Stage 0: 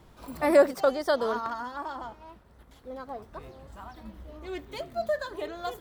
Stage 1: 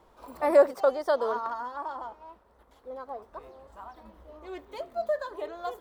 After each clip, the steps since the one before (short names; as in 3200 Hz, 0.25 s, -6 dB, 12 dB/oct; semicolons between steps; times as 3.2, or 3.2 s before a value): ten-band EQ 125 Hz -10 dB, 500 Hz +7 dB, 1000 Hz +8 dB; gain -7.5 dB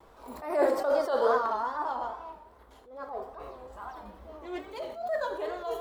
non-linear reverb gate 0.31 s falling, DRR 4.5 dB; vibrato 2.4 Hz 93 cents; attack slew limiter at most 100 dB/s; gain +3.5 dB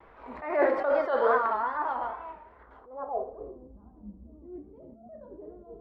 low-pass sweep 2100 Hz -> 220 Hz, 2.54–3.78